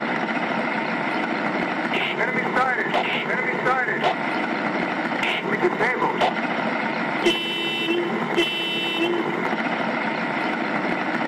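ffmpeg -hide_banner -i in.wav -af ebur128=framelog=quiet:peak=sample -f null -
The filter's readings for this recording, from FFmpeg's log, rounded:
Integrated loudness:
  I:         -22.5 LUFS
  Threshold: -32.5 LUFS
Loudness range:
  LRA:         0.8 LU
  Threshold: -42.3 LUFS
  LRA low:   -22.8 LUFS
  LRA high:  -21.9 LUFS
Sample peak:
  Peak:       -8.9 dBFS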